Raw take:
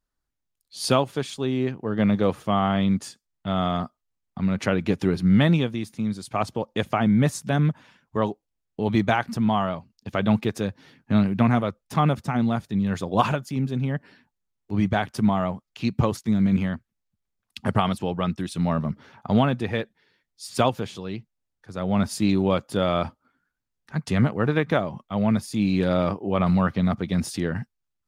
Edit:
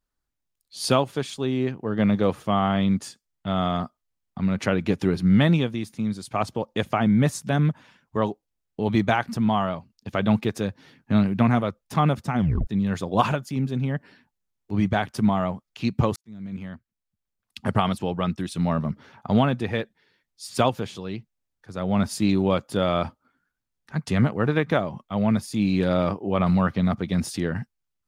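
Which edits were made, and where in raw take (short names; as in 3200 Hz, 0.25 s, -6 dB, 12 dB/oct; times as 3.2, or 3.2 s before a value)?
12.38 tape stop 0.29 s
16.16–17.81 fade in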